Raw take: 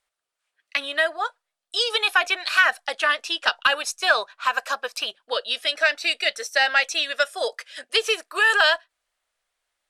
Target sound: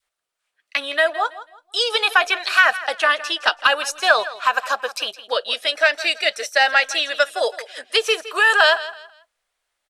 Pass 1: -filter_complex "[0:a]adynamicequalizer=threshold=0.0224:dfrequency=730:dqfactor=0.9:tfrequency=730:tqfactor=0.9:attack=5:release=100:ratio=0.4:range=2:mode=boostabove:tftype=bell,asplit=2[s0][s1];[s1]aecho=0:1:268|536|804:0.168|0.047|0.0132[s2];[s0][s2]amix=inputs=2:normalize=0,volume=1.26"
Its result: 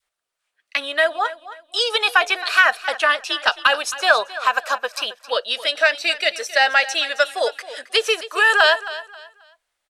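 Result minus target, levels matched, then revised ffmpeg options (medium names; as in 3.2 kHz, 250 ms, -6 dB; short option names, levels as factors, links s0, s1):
echo 104 ms late
-filter_complex "[0:a]adynamicequalizer=threshold=0.0224:dfrequency=730:dqfactor=0.9:tfrequency=730:tqfactor=0.9:attack=5:release=100:ratio=0.4:range=2:mode=boostabove:tftype=bell,asplit=2[s0][s1];[s1]aecho=0:1:164|328|492:0.168|0.047|0.0132[s2];[s0][s2]amix=inputs=2:normalize=0,volume=1.26"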